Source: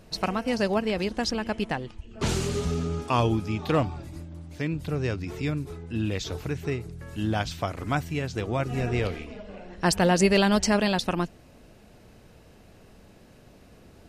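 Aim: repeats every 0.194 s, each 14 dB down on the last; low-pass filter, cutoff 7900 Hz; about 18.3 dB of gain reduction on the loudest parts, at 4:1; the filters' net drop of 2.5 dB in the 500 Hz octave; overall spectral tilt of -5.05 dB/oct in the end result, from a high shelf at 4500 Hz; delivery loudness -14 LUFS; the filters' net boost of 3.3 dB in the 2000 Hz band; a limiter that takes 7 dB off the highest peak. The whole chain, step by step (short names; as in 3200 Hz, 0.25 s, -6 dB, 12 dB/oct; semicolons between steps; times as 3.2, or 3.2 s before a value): LPF 7900 Hz; bell 500 Hz -3.5 dB; bell 2000 Hz +3.5 dB; high shelf 4500 Hz +5 dB; compressor 4:1, threshold -40 dBFS; limiter -32 dBFS; feedback echo 0.194 s, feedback 20%, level -14 dB; gain +29.5 dB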